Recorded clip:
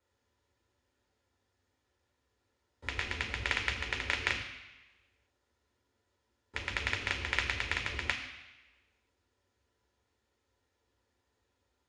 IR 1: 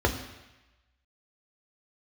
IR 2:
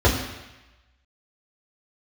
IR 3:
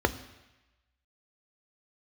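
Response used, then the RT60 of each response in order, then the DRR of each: 1; 1.0, 1.0, 1.0 seconds; 2.0, −6.5, 9.5 decibels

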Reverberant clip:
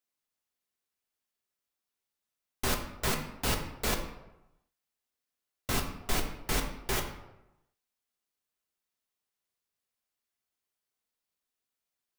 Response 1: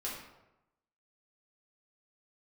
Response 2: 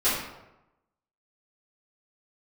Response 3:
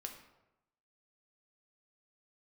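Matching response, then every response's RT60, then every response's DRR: 3; 0.95, 0.95, 0.95 seconds; −6.5, −15.5, 3.0 decibels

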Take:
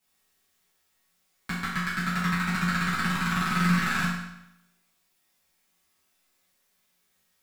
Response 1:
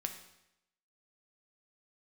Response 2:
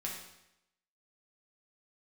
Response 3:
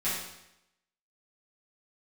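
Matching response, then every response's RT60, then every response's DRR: 3; 0.85, 0.85, 0.85 seconds; 5.0, −3.0, −12.0 decibels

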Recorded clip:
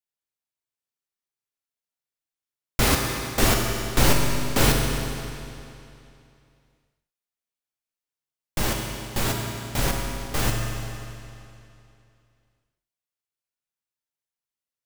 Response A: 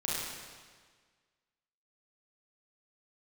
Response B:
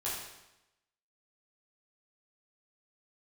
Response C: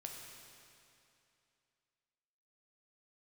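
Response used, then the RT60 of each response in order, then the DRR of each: C; 1.6, 0.90, 2.7 seconds; −7.0, −8.5, 0.5 decibels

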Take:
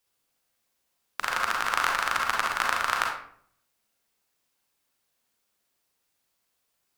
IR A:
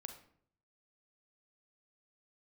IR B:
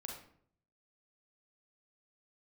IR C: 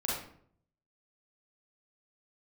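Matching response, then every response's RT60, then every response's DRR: B; 0.60, 0.60, 0.60 seconds; 6.0, −0.5, −6.0 decibels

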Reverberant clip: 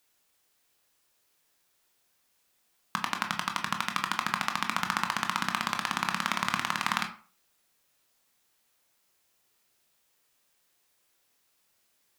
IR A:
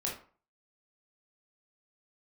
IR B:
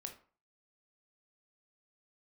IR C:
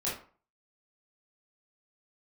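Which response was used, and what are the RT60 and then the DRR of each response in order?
B; 0.40, 0.40, 0.40 seconds; −3.0, 4.0, −7.5 decibels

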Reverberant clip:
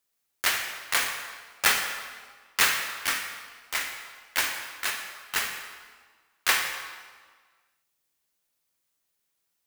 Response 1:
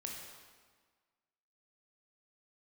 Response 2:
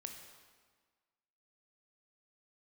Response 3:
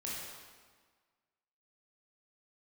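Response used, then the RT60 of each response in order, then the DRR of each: 2; 1.5, 1.5, 1.5 seconds; −1.0, 3.5, −6.5 decibels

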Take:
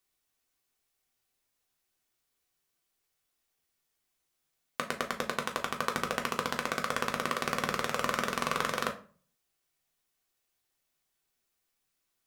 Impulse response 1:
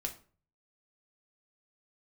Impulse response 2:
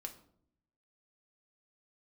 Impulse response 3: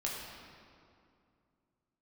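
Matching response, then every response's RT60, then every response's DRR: 1; 0.40, 0.65, 2.5 seconds; 2.0, 3.5, −4.0 decibels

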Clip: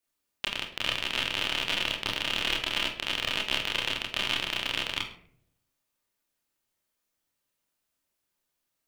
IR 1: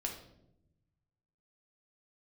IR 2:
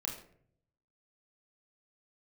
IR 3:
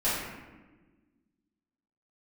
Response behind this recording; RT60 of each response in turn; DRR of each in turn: 2; 0.85, 0.60, 1.3 seconds; 0.5, −3.0, −12.5 decibels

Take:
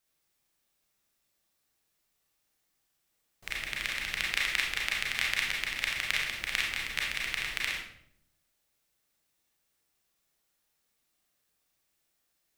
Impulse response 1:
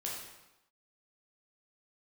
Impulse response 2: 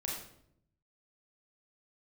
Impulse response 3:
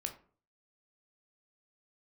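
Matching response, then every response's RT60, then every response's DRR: 2; 0.95, 0.70, 0.45 seconds; −4.0, −3.0, 4.0 decibels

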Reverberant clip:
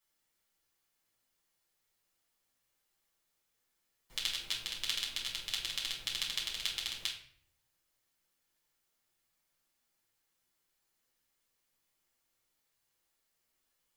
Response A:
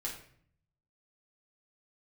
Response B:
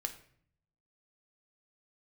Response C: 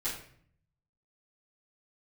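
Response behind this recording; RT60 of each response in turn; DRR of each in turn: A; 0.55, 0.60, 0.55 seconds; −4.0, 5.5, −11.0 decibels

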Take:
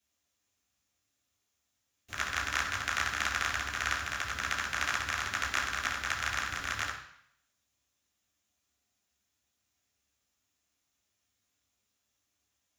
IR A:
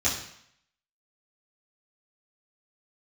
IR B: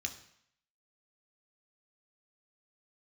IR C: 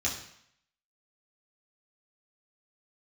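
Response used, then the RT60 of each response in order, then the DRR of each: C; 0.70, 0.70, 0.70 seconds; −12.0, 4.5, −5.5 decibels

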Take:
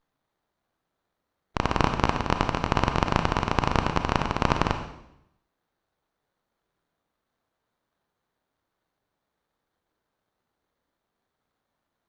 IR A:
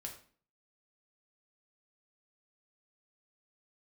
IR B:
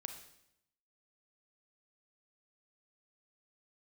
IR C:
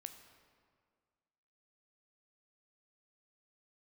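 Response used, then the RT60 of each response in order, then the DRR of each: B; 0.45, 0.80, 1.9 seconds; 0.5, 6.0, 7.5 decibels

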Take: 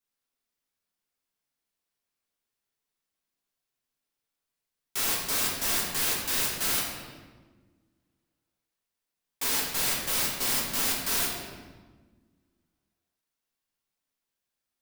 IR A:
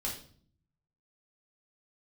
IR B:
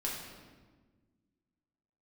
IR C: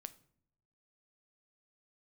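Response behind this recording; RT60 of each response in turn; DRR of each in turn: B; 0.50 s, 1.4 s, non-exponential decay; −3.5, −4.0, 12.0 decibels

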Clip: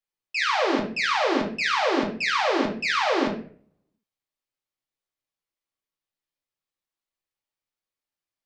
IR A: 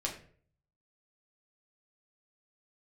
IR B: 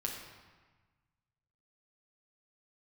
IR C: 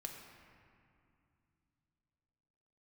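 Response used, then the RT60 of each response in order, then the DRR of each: A; 0.50, 1.3, 2.5 seconds; −2.0, −1.0, 1.0 decibels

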